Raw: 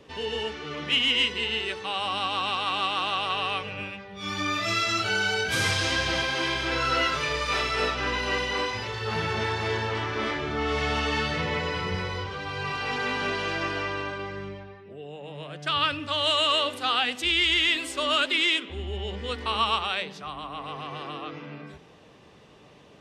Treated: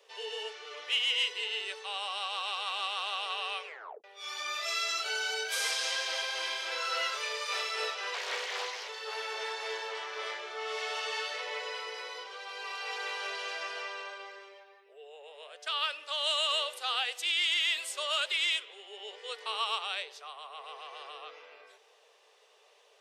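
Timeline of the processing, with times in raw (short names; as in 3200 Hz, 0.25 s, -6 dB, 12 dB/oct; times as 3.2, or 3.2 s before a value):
3.64 tape stop 0.40 s
8.14–8.89 Doppler distortion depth 0.46 ms
whole clip: Chebyshev high-pass 430 Hz, order 5; high shelf 3700 Hz +9.5 dB; gain -9 dB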